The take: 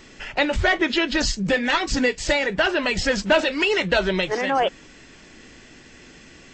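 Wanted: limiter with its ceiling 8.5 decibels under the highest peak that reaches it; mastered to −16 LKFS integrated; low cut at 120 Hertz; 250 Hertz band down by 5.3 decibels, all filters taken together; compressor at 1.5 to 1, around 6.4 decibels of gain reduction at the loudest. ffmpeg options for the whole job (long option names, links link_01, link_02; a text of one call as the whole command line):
ffmpeg -i in.wav -af "highpass=120,equalizer=frequency=250:width_type=o:gain=-7,acompressor=threshold=-31dB:ratio=1.5,volume=13dB,alimiter=limit=-6dB:level=0:latency=1" out.wav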